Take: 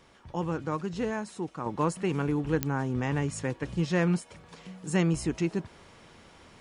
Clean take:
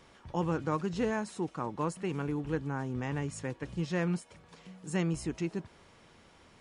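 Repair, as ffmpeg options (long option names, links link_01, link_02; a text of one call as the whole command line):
ffmpeg -i in.wav -af "adeclick=threshold=4,asetnsamples=nb_out_samples=441:pad=0,asendcmd='1.66 volume volume -5.5dB',volume=0dB" out.wav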